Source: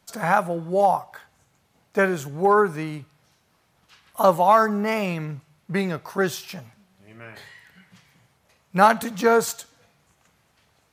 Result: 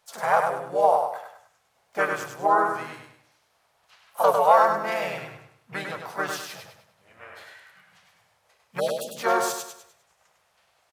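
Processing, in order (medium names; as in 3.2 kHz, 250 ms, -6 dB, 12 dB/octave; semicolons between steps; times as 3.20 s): spectral selection erased 8.80–9.17 s, 650–3100 Hz; resonant low shelf 470 Hz -11.5 dB, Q 1.5; harmony voices -4 st -3 dB, +4 st -13 dB; on a send: feedback delay 101 ms, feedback 38%, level -5 dB; on the sum: trim -5 dB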